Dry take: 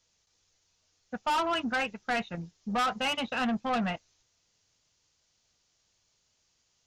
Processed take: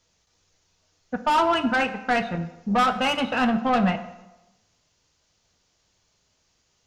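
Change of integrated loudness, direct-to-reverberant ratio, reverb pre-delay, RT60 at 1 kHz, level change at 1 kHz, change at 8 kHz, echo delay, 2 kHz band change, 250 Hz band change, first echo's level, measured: +7.5 dB, 8.5 dB, 8 ms, 1.0 s, +8.0 dB, +3.0 dB, no echo audible, +6.5 dB, +8.5 dB, no echo audible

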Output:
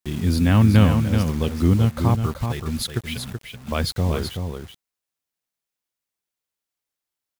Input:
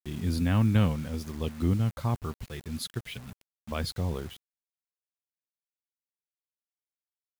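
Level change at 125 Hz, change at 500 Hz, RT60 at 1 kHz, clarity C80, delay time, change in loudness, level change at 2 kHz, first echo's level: +9.5 dB, +9.5 dB, no reverb audible, no reverb audible, 379 ms, +9.0 dB, +9.5 dB, −6.5 dB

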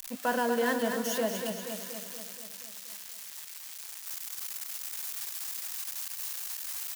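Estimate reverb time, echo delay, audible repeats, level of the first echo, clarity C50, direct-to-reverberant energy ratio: no reverb audible, 238 ms, 7, −6.5 dB, no reverb audible, no reverb audible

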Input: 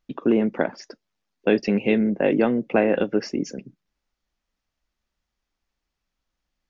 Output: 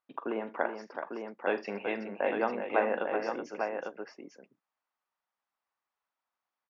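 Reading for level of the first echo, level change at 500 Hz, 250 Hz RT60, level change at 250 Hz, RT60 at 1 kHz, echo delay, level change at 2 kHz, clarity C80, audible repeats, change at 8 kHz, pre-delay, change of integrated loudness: −14.0 dB, −9.0 dB, no reverb audible, −17.0 dB, no reverb audible, 45 ms, −5.0 dB, no reverb audible, 4, can't be measured, no reverb audible, −11.0 dB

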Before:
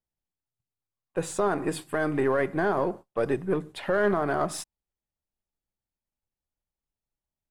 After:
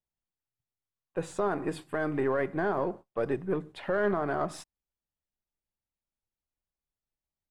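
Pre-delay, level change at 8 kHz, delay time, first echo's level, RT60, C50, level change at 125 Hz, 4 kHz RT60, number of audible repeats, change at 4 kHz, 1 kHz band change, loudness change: no reverb audible, −11.0 dB, no echo audible, no echo audible, no reverb audible, no reverb audible, −3.5 dB, no reverb audible, no echo audible, −7.0 dB, −4.0 dB, −3.5 dB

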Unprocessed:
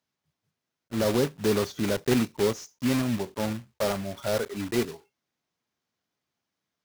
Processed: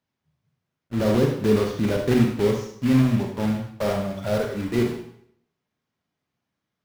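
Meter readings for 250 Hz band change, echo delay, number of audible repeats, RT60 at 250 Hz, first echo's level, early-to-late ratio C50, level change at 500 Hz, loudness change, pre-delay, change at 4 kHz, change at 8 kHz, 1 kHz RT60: +6.0 dB, no echo audible, no echo audible, 0.65 s, no echo audible, 4.5 dB, +3.5 dB, +5.0 dB, 30 ms, −1.0 dB, −4.5 dB, 0.65 s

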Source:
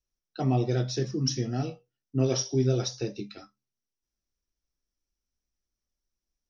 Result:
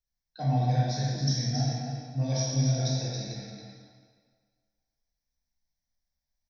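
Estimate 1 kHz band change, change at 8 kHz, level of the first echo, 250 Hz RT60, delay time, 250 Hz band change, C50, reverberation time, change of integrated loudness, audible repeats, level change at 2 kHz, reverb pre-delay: +4.0 dB, can't be measured, −6.0 dB, 1.6 s, 274 ms, −2.5 dB, −2.5 dB, 1.7 s, 0.0 dB, 1, 0.0 dB, 16 ms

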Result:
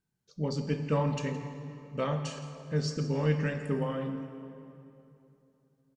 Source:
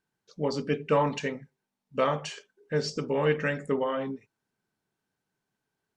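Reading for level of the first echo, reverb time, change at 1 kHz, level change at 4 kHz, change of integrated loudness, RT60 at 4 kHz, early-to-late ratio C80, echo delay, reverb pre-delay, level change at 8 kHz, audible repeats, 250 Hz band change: −16.0 dB, 2.9 s, −7.0 dB, −4.5 dB, −3.5 dB, 2.1 s, 8.0 dB, 167 ms, 6 ms, −2.0 dB, 1, 0.0 dB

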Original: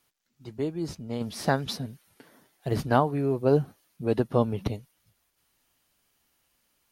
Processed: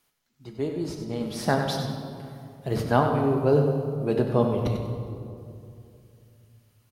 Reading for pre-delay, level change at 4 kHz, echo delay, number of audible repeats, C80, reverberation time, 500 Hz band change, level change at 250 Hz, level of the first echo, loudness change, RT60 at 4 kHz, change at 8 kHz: 5 ms, +2.0 dB, 96 ms, 1, 4.5 dB, 2.7 s, +2.5 dB, +2.5 dB, −8.5 dB, +2.0 dB, 1.4 s, can't be measured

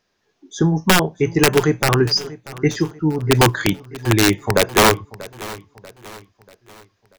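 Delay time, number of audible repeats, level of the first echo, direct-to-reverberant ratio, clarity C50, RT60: 638 ms, 3, −18.5 dB, no reverb audible, no reverb audible, no reverb audible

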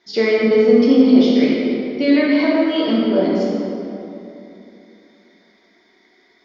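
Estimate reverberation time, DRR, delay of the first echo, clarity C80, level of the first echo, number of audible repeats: 2.9 s, −5.5 dB, no echo audible, −0.5 dB, no echo audible, no echo audible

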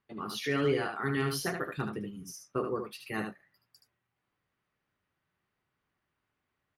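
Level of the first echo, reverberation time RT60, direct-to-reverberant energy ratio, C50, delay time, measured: −6.0 dB, no reverb audible, no reverb audible, no reverb audible, 75 ms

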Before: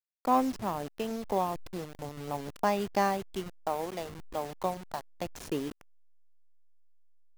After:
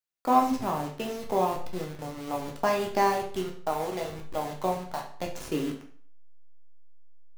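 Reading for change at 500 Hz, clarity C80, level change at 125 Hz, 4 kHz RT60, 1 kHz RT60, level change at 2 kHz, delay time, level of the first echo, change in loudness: +4.0 dB, 12.0 dB, +3.0 dB, 0.45 s, 0.50 s, +3.5 dB, no echo audible, no echo audible, +3.5 dB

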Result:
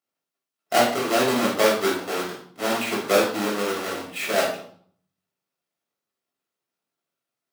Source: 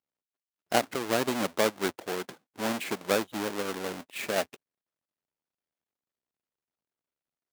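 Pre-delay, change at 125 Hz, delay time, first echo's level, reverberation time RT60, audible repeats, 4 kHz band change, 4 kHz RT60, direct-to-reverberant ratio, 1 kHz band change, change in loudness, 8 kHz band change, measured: 4 ms, +4.0 dB, no echo audible, no echo audible, 0.60 s, no echo audible, +7.5 dB, 0.50 s, −4.5 dB, +8.0 dB, +7.5 dB, +6.5 dB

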